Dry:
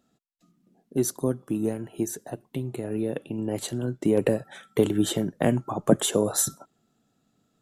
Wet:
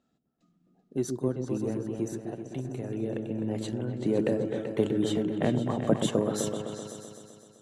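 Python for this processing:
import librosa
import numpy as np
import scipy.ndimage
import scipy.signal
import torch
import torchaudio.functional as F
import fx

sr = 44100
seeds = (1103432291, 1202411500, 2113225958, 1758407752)

y = fx.air_absorb(x, sr, metres=67.0)
y = fx.echo_opening(y, sr, ms=128, hz=400, octaves=2, feedback_pct=70, wet_db=-3)
y = y * 10.0 ** (-5.0 / 20.0)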